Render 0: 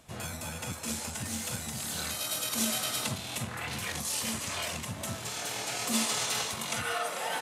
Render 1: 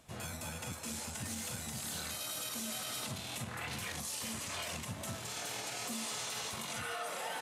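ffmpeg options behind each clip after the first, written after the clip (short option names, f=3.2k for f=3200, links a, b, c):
-af "alimiter=level_in=2.5dB:limit=-24dB:level=0:latency=1:release=37,volume=-2.5dB,volume=-4dB"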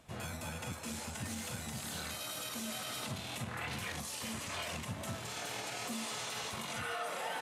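-af "bass=f=250:g=0,treble=f=4k:g=-5,volume=1.5dB"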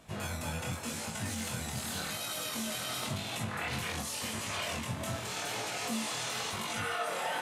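-af "flanger=delay=18.5:depth=6.1:speed=0.89,volume=7.5dB"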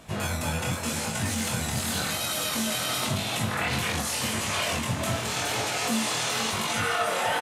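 -af "aecho=1:1:481:0.282,volume=8dB"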